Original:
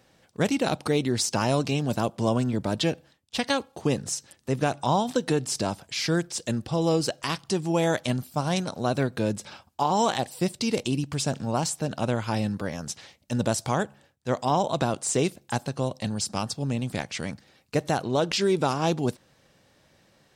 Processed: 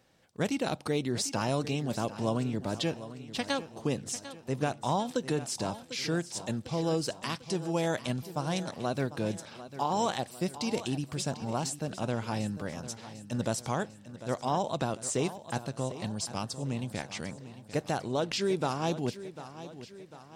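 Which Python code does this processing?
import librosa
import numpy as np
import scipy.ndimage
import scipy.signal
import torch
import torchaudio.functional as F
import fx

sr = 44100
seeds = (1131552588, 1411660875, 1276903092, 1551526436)

y = fx.echo_feedback(x, sr, ms=748, feedback_pct=51, wet_db=-14.0)
y = F.gain(torch.from_numpy(y), -6.0).numpy()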